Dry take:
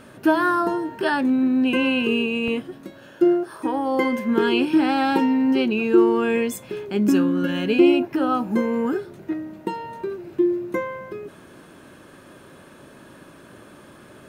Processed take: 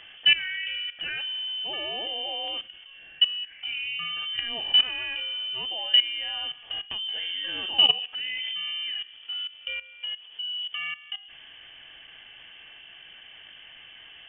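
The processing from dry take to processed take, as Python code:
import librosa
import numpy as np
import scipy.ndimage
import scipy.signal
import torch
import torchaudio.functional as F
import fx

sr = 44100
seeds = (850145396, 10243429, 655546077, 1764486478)

y = fx.rev_fdn(x, sr, rt60_s=1.4, lf_ratio=0.8, hf_ratio=0.35, size_ms=10.0, drr_db=10.0)
y = fx.freq_invert(y, sr, carrier_hz=3300)
y = fx.level_steps(y, sr, step_db=16)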